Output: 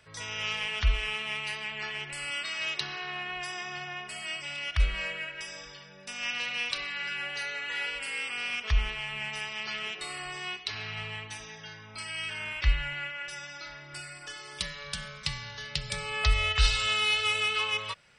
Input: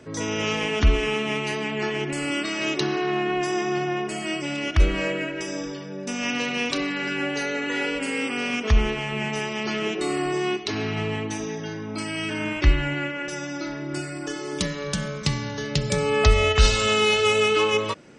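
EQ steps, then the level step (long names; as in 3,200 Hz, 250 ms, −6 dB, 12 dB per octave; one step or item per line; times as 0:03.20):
guitar amp tone stack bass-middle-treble 10-0-10
parametric band 6,600 Hz −12.5 dB 0.43 octaves
0.0 dB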